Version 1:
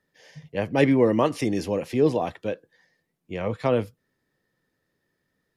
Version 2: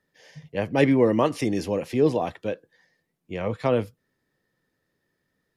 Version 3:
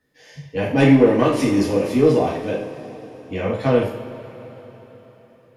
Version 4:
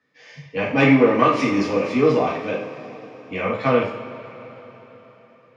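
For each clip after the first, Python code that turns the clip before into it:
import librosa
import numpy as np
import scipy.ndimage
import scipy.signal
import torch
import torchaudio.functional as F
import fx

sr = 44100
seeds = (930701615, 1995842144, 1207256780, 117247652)

y1 = x
y2 = 10.0 ** (-12.5 / 20.0) * np.tanh(y1 / 10.0 ** (-12.5 / 20.0))
y2 = fx.rev_double_slope(y2, sr, seeds[0], early_s=0.48, late_s=4.3, knee_db=-18, drr_db=-5.0)
y3 = fx.cabinet(y2, sr, low_hz=140.0, low_slope=12, high_hz=6200.0, hz=(350.0, 1200.0, 2300.0), db=(-4, 10, 9))
y3 = y3 * librosa.db_to_amplitude(-1.0)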